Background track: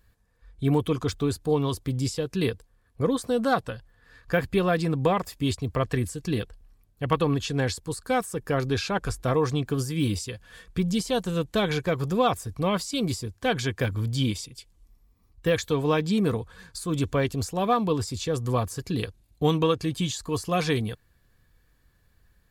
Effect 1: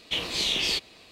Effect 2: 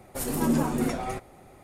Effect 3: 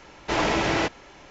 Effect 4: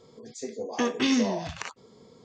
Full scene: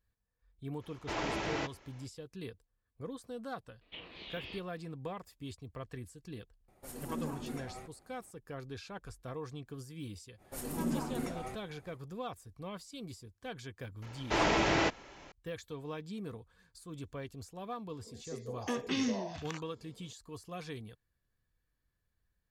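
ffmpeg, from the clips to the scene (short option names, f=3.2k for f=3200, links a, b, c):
-filter_complex "[3:a]asplit=2[a][b];[2:a]asplit=2[c][d];[0:a]volume=-18.5dB[e];[1:a]lowpass=f=3.1k:w=0.5412,lowpass=f=3.1k:w=1.3066[f];[a]atrim=end=1.3,asetpts=PTS-STARTPTS,volume=-12.5dB,afade=t=in:d=0.05,afade=t=out:st=1.25:d=0.05,adelay=790[g];[f]atrim=end=1.11,asetpts=PTS-STARTPTS,volume=-16.5dB,afade=t=in:d=0.004:c=hsin,afade=t=out:st=1.106:d=0.004:c=hsin,adelay=168021S[h];[c]atrim=end=1.63,asetpts=PTS-STARTPTS,volume=-15.5dB,afade=t=in:d=0.004:c=hsin,afade=t=out:st=1.626:d=0.004:c=hsin,adelay=6680[i];[d]atrim=end=1.63,asetpts=PTS-STARTPTS,volume=-10.5dB,afade=t=in:d=0.05,afade=t=out:st=1.58:d=0.05,adelay=10370[j];[b]atrim=end=1.3,asetpts=PTS-STARTPTS,volume=-5dB,afade=t=in:d=0.004:c=hsin,afade=t=out:st=1.296:d=0.004:c=hsin,adelay=14020[k];[4:a]atrim=end=2.24,asetpts=PTS-STARTPTS,volume=-9dB,afade=t=in:d=0.004:c=hsin,afade=t=out:st=2.236:d=0.004:c=hsin,adelay=17890[l];[e][g][h][i][j][k][l]amix=inputs=7:normalize=0"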